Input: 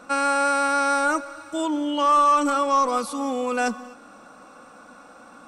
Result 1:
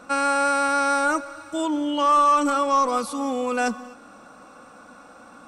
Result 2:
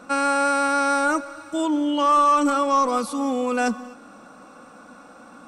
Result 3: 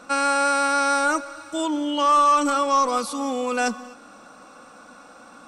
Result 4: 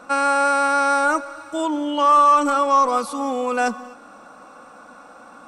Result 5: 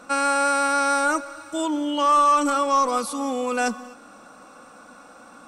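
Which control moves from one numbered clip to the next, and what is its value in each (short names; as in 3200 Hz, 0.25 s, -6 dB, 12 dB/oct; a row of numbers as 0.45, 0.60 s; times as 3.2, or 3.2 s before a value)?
bell, frequency: 74, 200, 5000, 880, 15000 Hz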